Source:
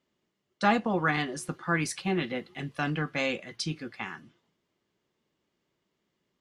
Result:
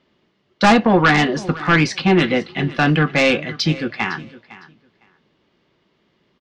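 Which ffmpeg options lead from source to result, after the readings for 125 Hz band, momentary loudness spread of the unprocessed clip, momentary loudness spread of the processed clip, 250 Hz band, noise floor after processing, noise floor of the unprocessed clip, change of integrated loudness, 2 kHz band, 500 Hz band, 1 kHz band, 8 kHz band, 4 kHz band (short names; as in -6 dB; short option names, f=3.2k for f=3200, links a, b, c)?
+14.5 dB, 12 LU, 10 LU, +14.0 dB, -65 dBFS, -80 dBFS, +13.5 dB, +13.0 dB, +14.0 dB, +12.0 dB, +6.5 dB, +14.0 dB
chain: -af "lowpass=f=4.8k:w=0.5412,lowpass=f=4.8k:w=1.3066,aeval=exprs='0.299*(cos(1*acos(clip(val(0)/0.299,-1,1)))-cos(1*PI/2))+0.133*(cos(5*acos(clip(val(0)/0.299,-1,1)))-cos(5*PI/2))':c=same,aecho=1:1:507|1014:0.119|0.019,volume=5.5dB"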